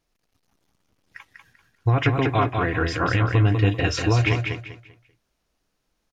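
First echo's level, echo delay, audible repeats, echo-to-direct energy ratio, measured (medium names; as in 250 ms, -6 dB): -5.0 dB, 195 ms, 3, -4.5 dB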